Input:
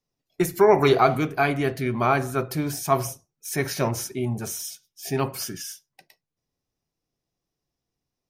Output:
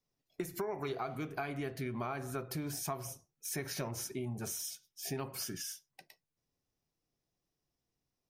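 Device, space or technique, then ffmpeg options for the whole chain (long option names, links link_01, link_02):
serial compression, peaks first: -af "acompressor=threshold=-27dB:ratio=6,acompressor=threshold=-39dB:ratio=1.5,volume=-3.5dB"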